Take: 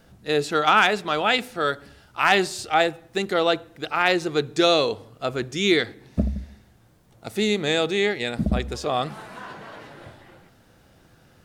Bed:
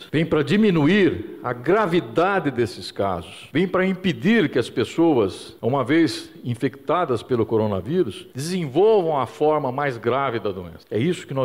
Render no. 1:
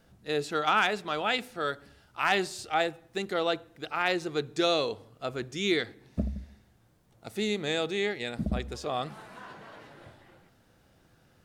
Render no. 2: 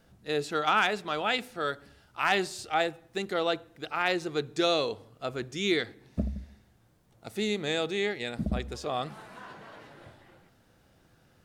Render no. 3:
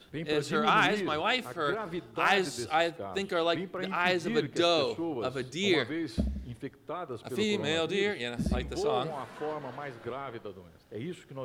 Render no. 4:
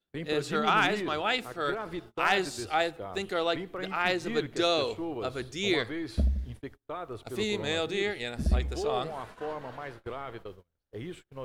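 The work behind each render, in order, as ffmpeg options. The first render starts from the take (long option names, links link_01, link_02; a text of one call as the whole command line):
ffmpeg -i in.wav -af "volume=-7.5dB" out.wav
ffmpeg -i in.wav -af anull out.wav
ffmpeg -i in.wav -i bed.wav -filter_complex "[1:a]volume=-17dB[link_01];[0:a][link_01]amix=inputs=2:normalize=0" out.wav
ffmpeg -i in.wav -af "agate=range=-30dB:threshold=-44dB:ratio=16:detection=peak,asubboost=boost=5.5:cutoff=65" out.wav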